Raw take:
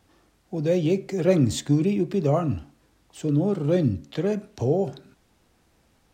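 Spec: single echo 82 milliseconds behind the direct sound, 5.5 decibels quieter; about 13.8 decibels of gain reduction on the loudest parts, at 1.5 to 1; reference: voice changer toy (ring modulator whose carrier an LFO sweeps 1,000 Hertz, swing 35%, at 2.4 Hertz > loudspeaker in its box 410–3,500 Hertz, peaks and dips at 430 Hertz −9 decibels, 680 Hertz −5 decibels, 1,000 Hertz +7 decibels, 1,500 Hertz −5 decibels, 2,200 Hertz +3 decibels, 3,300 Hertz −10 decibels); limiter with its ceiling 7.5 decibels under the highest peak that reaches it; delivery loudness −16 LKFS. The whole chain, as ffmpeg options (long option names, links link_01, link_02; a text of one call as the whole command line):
ffmpeg -i in.wav -af "acompressor=threshold=-55dB:ratio=1.5,alimiter=level_in=4.5dB:limit=-24dB:level=0:latency=1,volume=-4.5dB,aecho=1:1:82:0.531,aeval=exprs='val(0)*sin(2*PI*1000*n/s+1000*0.35/2.4*sin(2*PI*2.4*n/s))':channel_layout=same,highpass=410,equalizer=frequency=430:width_type=q:width=4:gain=-9,equalizer=frequency=680:width_type=q:width=4:gain=-5,equalizer=frequency=1000:width_type=q:width=4:gain=7,equalizer=frequency=1500:width_type=q:width=4:gain=-5,equalizer=frequency=2200:width_type=q:width=4:gain=3,equalizer=frequency=3300:width_type=q:width=4:gain=-10,lowpass=frequency=3500:width=0.5412,lowpass=frequency=3500:width=1.3066,volume=23.5dB" out.wav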